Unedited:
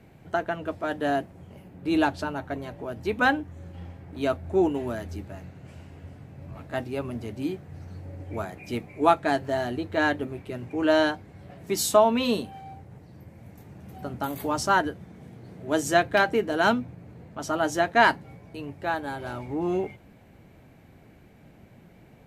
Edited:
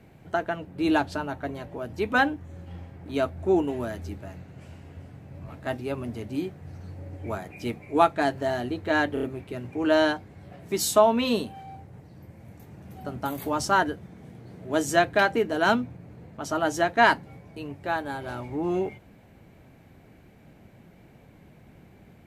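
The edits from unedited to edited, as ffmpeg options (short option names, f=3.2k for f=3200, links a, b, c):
-filter_complex "[0:a]asplit=5[a][b][c][d][e];[a]atrim=end=0.652[f];[b]atrim=start=1.718:end=10.242[g];[c]atrim=start=10.208:end=10.242[h];[d]atrim=start=10.208:end=10.242[i];[e]atrim=start=10.208[j];[f][g]acrossfade=d=0.004:c1=hsin:c2=hsin[k];[k][h]acrossfade=d=0.004:c1=hsin:c2=hsin[l];[l][i]acrossfade=d=0.004:c1=hsin:c2=hsin[m];[m][j]acrossfade=d=0.004:c1=hsin:c2=hsin"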